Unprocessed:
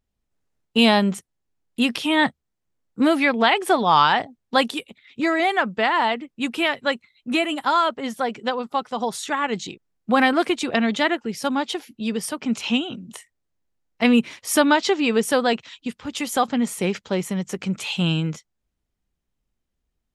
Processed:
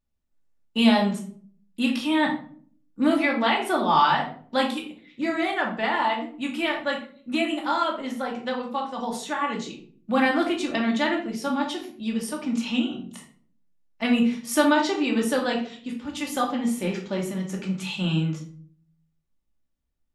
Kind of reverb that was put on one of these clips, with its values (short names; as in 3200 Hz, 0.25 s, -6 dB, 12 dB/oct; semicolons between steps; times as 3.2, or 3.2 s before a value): shoebox room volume 520 m³, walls furnished, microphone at 2.5 m; gain -8 dB